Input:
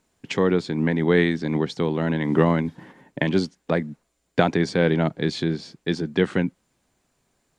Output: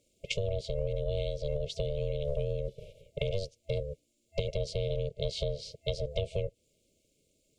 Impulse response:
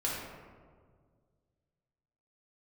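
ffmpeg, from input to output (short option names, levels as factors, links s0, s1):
-af "afftfilt=real='re*(1-between(b*sr/4096,370,2400))':imag='im*(1-between(b*sr/4096,370,2400))':win_size=4096:overlap=0.75,aeval=exprs='val(0)*sin(2*PI*290*n/s)':c=same,acompressor=threshold=0.0316:ratio=6,volume=1.26"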